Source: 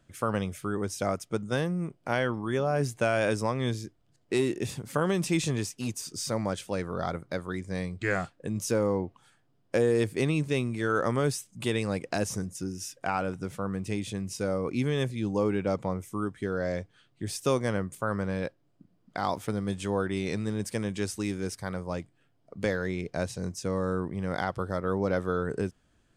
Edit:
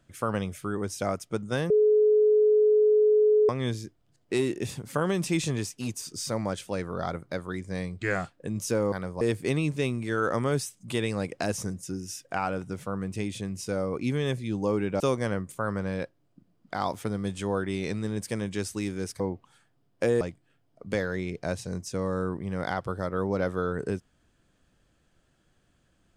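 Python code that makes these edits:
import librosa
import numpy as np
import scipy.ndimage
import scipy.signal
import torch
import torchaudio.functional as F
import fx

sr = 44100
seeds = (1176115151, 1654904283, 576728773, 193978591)

y = fx.edit(x, sr, fx.bleep(start_s=1.7, length_s=1.79, hz=425.0, db=-17.0),
    fx.swap(start_s=8.92, length_s=1.01, other_s=21.63, other_length_s=0.29),
    fx.cut(start_s=15.72, length_s=1.71), tone=tone)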